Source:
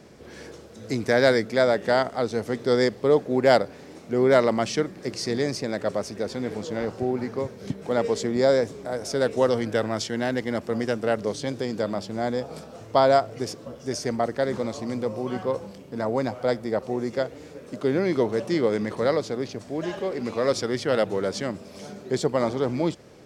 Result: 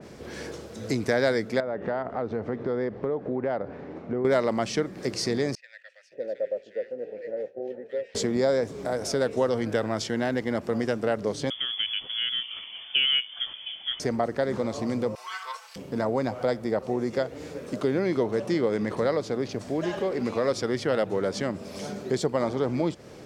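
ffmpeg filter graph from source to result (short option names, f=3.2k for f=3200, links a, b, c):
-filter_complex "[0:a]asettb=1/sr,asplit=3[a][b][c];[a]atrim=end=1.604[d];[b]atrim=start=1.6:end=4.25,asetpts=PTS-STARTPTS,afade=t=in:d=0.004:c=qsin,afade=t=out:st=2.646:d=0.004:c=qsin,lowpass=1.6k,acompressor=threshold=-30dB:ratio=2.5:attack=3.2:release=140:knee=1:detection=peak[e];[c]atrim=start=4.246[f];[d][e]acrossfade=d=0.004:c1=hsin:c2=qsin[g];[g][f]acrossfade=d=0.004:c1=qsin:c2=hsin,asettb=1/sr,asplit=3[h][i][j];[h]atrim=end=5.554[k];[i]atrim=start=5.55:end=8.15,asetpts=PTS-STARTPTS,afade=t=in:d=0.004:c=qsin,afade=t=out:st=2.596:d=0.004:c=qsin,agate=range=-33dB:threshold=-33dB:ratio=3:release=100:detection=peak,asplit=3[l][m][n];[l]bandpass=f=530:t=q:w=8,volume=0dB[o];[m]bandpass=f=1.84k:t=q:w=8,volume=-6dB[p];[n]bandpass=f=2.48k:t=q:w=8,volume=-9dB[q];[o][p][q]amix=inputs=3:normalize=0,acrossover=split=1400[r][s];[r]adelay=560[t];[t][s]amix=inputs=2:normalize=0,atrim=end_sample=114660[u];[j]atrim=start=8.146[v];[k][u]acrossfade=d=0.004:c1=hsin:c2=qsin[w];[w][v]acrossfade=d=0.004:c1=qsin:c2=hsin,asettb=1/sr,asplit=3[x][y][z];[x]atrim=end=11.504[aa];[y]atrim=start=11.5:end=14,asetpts=PTS-STARTPTS,afade=t=in:d=0.004:c=qsin,afade=t=out:st=2.496:d=0.004:c=qsin,highpass=170,lowpass=f=3.1k:t=q:w=0.5098,lowpass=f=3.1k:t=q:w=0.6013,lowpass=f=3.1k:t=q:w=0.9,lowpass=f=3.1k:t=q:w=2.563,afreqshift=-3600[ab];[z]atrim=start=13.996[ac];[aa][ab]acrossfade=d=0.004:c1=hsin:c2=qsin[ad];[ad][ac]acrossfade=d=0.004:c1=qsin:c2=hsin,asettb=1/sr,asplit=3[ae][af][ag];[ae]atrim=end=15.154[ah];[af]atrim=start=15.15:end=15.76,asetpts=PTS-STARTPTS,afade=t=in:d=0.004:c=qsin,afade=t=out:st=0.606:d=0.004:c=qsin,highpass=f=1.2k:w=0.5412,highpass=f=1.2k:w=1.3066,aecho=1:1:4.5:0.92,atrim=end_sample=26901[ai];[ag]atrim=start=15.756[aj];[ah][ai]acrossfade=d=0.004:c1=hsin:c2=qsin[ak];[ak][aj]acrossfade=d=0.004:c1=qsin:c2=hsin,acompressor=threshold=-31dB:ratio=2,adynamicequalizer=threshold=0.00562:dfrequency=2700:dqfactor=0.7:tfrequency=2700:tqfactor=0.7:attack=5:release=100:ratio=0.375:range=2:mode=cutabove:tftype=highshelf,volume=4.5dB"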